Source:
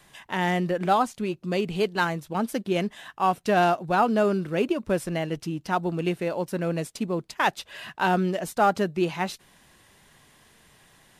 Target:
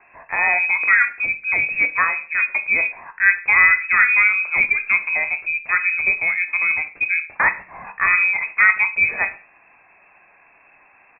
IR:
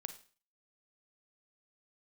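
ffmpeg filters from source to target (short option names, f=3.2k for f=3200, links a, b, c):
-filter_complex "[0:a]lowpass=f=2.3k:t=q:w=0.5098,lowpass=f=2.3k:t=q:w=0.6013,lowpass=f=2.3k:t=q:w=0.9,lowpass=f=2.3k:t=q:w=2.563,afreqshift=-2700,asplit=2[a][b];[b]adelay=21,volume=-11dB[c];[a][c]amix=inputs=2:normalize=0,asplit=2[d][e];[1:a]atrim=start_sample=2205,afade=t=out:st=0.28:d=0.01,atrim=end_sample=12789[f];[e][f]afir=irnorm=-1:irlink=0,volume=10dB[g];[d][g]amix=inputs=2:normalize=0,volume=-4dB"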